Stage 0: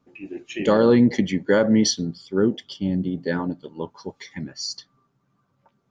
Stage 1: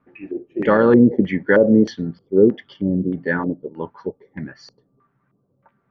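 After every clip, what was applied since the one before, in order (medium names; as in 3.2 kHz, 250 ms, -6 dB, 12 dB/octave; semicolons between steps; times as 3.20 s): LFO low-pass square 1.6 Hz 470–1800 Hz; trim +1.5 dB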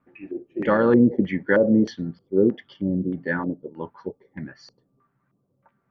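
band-stop 430 Hz, Q 14; trim -4 dB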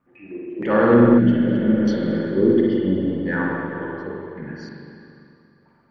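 transient shaper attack -6 dB, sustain +1 dB; spring tank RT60 2.6 s, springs 42/57 ms, chirp 20 ms, DRR -4.5 dB; spectral replace 1.21–2.16 s, 260–2600 Hz after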